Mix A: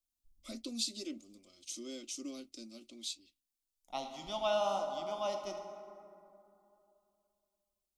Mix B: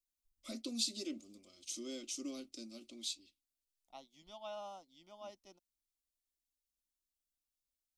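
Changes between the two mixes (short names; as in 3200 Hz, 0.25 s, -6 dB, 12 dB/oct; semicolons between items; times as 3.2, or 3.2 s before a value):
second voice -11.0 dB; reverb: off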